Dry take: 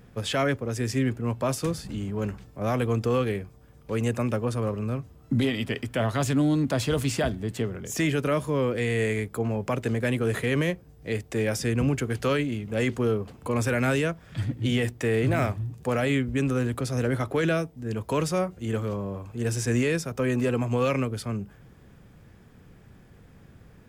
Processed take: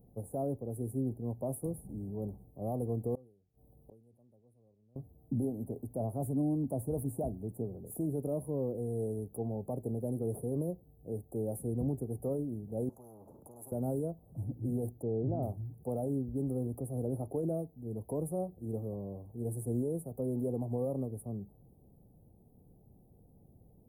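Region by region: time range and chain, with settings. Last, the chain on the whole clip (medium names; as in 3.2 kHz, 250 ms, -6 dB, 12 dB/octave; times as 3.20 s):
3.15–4.96 s: inverted gate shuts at -34 dBFS, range -30 dB + decay stretcher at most 85 dB/s
12.89–13.72 s: band-pass 150–6100 Hz + static phaser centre 2.7 kHz, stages 6 + spectrum-flattening compressor 10:1
15.02–15.43 s: Butterworth band-stop 5.5 kHz, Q 0.81 + distance through air 180 m
whole clip: Chebyshev band-stop 790–9800 Hz, order 4; treble shelf 9.4 kHz +6 dB; trim -8.5 dB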